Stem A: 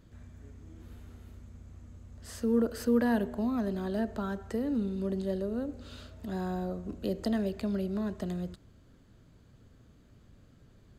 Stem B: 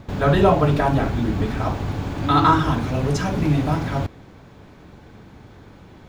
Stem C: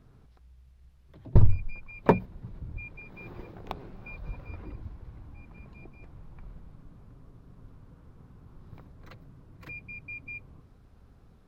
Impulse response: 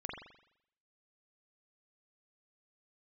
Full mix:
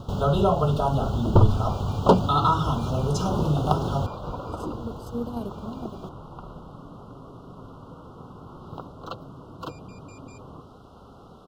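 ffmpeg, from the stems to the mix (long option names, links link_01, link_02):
-filter_complex "[0:a]adelay=2250,volume=-2dB[link_01];[1:a]equalizer=frequency=300:width_type=o:width=0.24:gain=-15,acompressor=threshold=-32dB:ratio=1.5,volume=2.5dB,asplit=2[link_02][link_03];[2:a]asplit=2[link_04][link_05];[link_05]highpass=frequency=720:poles=1,volume=29dB,asoftclip=type=tanh:threshold=-4dB[link_06];[link_04][link_06]amix=inputs=2:normalize=0,lowpass=frequency=1900:poles=1,volume=-6dB,volume=-1dB[link_07];[link_03]apad=whole_len=583571[link_08];[link_01][link_08]sidechaingate=range=-33dB:threshold=-41dB:ratio=16:detection=peak[link_09];[link_09][link_02][link_07]amix=inputs=3:normalize=0,asuperstop=centerf=2000:order=12:qfactor=1.4"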